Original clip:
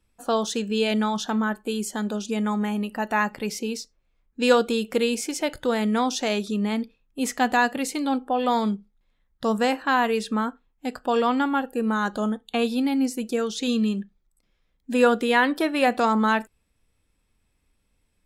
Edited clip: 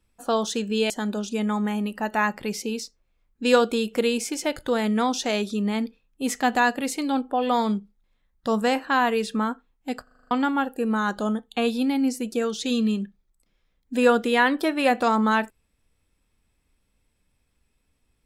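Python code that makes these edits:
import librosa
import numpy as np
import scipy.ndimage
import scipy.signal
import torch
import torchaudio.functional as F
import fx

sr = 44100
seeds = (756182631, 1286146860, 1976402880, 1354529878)

y = fx.edit(x, sr, fx.cut(start_s=0.9, length_s=0.97),
    fx.stutter_over(start_s=11.0, slice_s=0.04, count=7), tone=tone)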